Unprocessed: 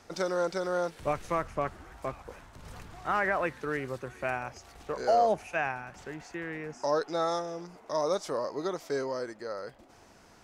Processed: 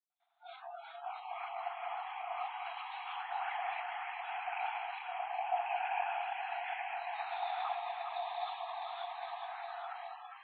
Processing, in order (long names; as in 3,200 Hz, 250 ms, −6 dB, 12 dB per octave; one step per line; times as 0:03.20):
reversed playback
downward compressor 20 to 1, threshold −40 dBFS, peak gain reduction 20.5 dB
reversed playback
reverb whose tail is shaped and stops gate 340 ms rising, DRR −6.5 dB
multi-voice chorus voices 2, 0.67 Hz, delay 24 ms, depth 3.4 ms
downward expander −45 dBFS
linear-prediction vocoder at 8 kHz pitch kept
flat-topped bell 1,400 Hz −10.5 dB 1.2 octaves
random phases in short frames
linear-phase brick-wall high-pass 680 Hz
on a send: delay that swaps between a low-pass and a high-pass 203 ms, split 1,000 Hz, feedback 88%, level −3.5 dB
on the sum: noise reduction from a noise print of the clip's start 27 dB
level +8 dB